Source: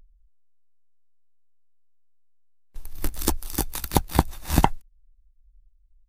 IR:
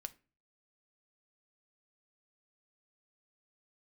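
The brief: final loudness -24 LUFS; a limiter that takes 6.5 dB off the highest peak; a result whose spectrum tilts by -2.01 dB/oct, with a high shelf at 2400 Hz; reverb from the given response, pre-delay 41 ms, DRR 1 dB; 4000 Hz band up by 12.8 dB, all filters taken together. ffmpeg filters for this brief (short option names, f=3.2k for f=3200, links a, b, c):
-filter_complex "[0:a]highshelf=f=2.4k:g=9,equalizer=f=4k:t=o:g=7.5,alimiter=limit=-2.5dB:level=0:latency=1,asplit=2[a][b];[1:a]atrim=start_sample=2205,adelay=41[c];[b][c]afir=irnorm=-1:irlink=0,volume=3dB[d];[a][d]amix=inputs=2:normalize=0,volume=-3.5dB"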